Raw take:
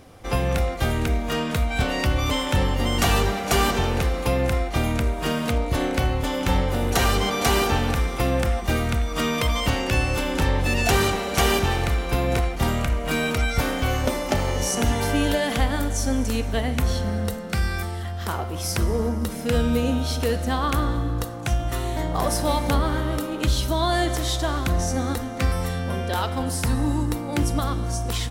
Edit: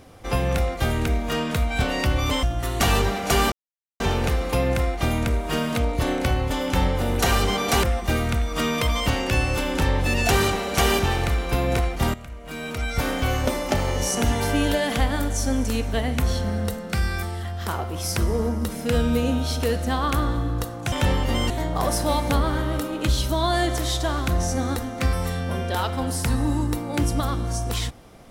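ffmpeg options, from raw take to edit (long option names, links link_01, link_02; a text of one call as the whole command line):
ffmpeg -i in.wav -filter_complex "[0:a]asplit=8[link_01][link_02][link_03][link_04][link_05][link_06][link_07][link_08];[link_01]atrim=end=2.432[link_09];[link_02]atrim=start=21.518:end=21.892[link_10];[link_03]atrim=start=3.008:end=3.73,asetpts=PTS-STARTPTS,afade=type=out:start_time=0.718:duration=0.004:curve=hsin,apad=pad_dur=0.48[link_11];[link_04]atrim=start=3.73:end=7.562,asetpts=PTS-STARTPTS,afade=type=in:duration=0.004:curve=hsin[link_12];[link_05]atrim=start=8.428:end=12.74,asetpts=PTS-STARTPTS,afade=type=out:start_time=4.308:duration=0.004:curve=hsin:silence=0.158489[link_13];[link_06]atrim=start=12.74:end=21.522,asetpts=PTS-STARTPTS,afade=type=in:duration=0.96:curve=qua:silence=0.158489[link_14];[link_07]atrim=start=2.428:end=3.012[link_15];[link_08]atrim=start=21.888[link_16];[link_09][link_10]acrossfade=duration=0.004:curve1=hsin:curve2=hsin[link_17];[link_11][link_12]concat=n=2:v=0:a=1[link_18];[link_17][link_18]acrossfade=duration=0.004:curve1=hsin:curve2=hsin[link_19];[link_13][link_14]concat=n=2:v=0:a=1[link_20];[link_19][link_20]acrossfade=duration=0.004:curve1=hsin:curve2=hsin[link_21];[link_21][link_15]acrossfade=duration=0.004:curve1=hsin:curve2=hsin[link_22];[link_22][link_16]acrossfade=duration=0.004:curve1=hsin:curve2=hsin" out.wav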